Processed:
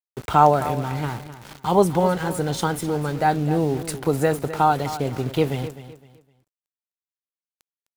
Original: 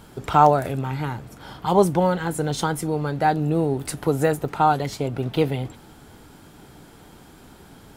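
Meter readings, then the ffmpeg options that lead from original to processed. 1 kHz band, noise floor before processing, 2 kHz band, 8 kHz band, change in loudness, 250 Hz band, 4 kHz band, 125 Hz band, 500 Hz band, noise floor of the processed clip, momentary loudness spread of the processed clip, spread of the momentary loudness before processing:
0.0 dB, −48 dBFS, +0.5 dB, +0.5 dB, 0.0 dB, 0.0 dB, +0.5 dB, 0.0 dB, 0.0 dB, below −85 dBFS, 13 LU, 12 LU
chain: -af "aeval=exprs='val(0)*gte(abs(val(0)),0.0188)':channel_layout=same,aecho=1:1:256|512|768:0.211|0.0592|0.0166"

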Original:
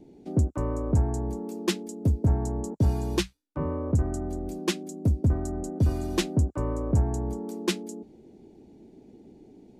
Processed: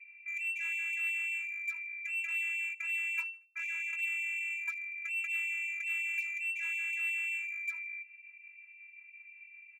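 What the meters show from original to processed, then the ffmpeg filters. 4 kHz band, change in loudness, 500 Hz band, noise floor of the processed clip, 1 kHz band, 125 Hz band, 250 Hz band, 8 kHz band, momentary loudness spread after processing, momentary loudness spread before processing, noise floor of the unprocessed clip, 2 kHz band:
−16.5 dB, −5.5 dB, below −40 dB, −56 dBFS, below −20 dB, below −40 dB, below −40 dB, −11.5 dB, 19 LU, 8 LU, −54 dBFS, +13.0 dB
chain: -filter_complex "[0:a]aresample=16000,asoftclip=type=tanh:threshold=-27dB,aresample=44100,afftfilt=real='hypot(re,im)*cos(PI*b)':imag='0':win_size=512:overlap=0.75,lowpass=frequency=2300:width_type=q:width=0.5098,lowpass=frequency=2300:width_type=q:width=0.6013,lowpass=frequency=2300:width_type=q:width=0.9,lowpass=frequency=2300:width_type=q:width=2.563,afreqshift=-2700,asplit=2[link_01][link_02];[link_02]aeval=exprs='0.015*(abs(mod(val(0)/0.015+3,4)-2)-1)':channel_layout=same,volume=-11.5dB[link_03];[link_01][link_03]amix=inputs=2:normalize=0,aecho=1:1:77|154|231:0.0944|0.033|0.0116,afftfilt=real='re*gte(b*sr/1024,850*pow(2100/850,0.5+0.5*sin(2*PI*5.5*pts/sr)))':imag='im*gte(b*sr/1024,850*pow(2100/850,0.5+0.5*sin(2*PI*5.5*pts/sr)))':win_size=1024:overlap=0.75,volume=-1.5dB"

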